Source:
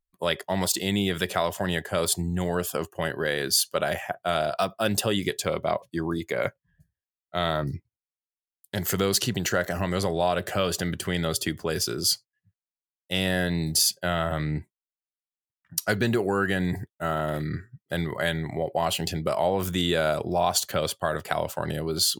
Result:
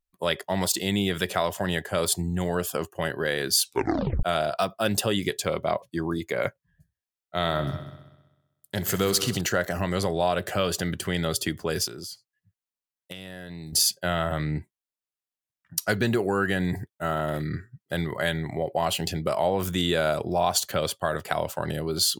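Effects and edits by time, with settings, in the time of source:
3.61 tape stop 0.62 s
7.36–9.41 multi-head echo 64 ms, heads all three, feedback 42%, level -17 dB
11.87–13.73 compressor 16:1, threshold -34 dBFS

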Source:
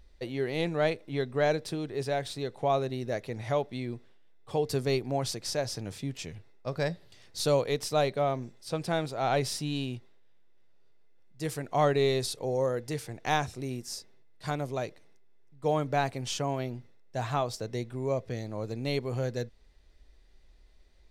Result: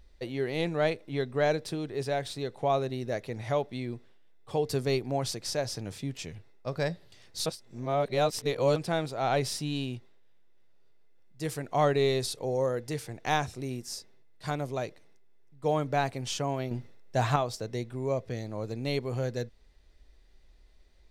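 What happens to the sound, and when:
7.46–8.76 reverse
16.71–17.36 gain +6 dB

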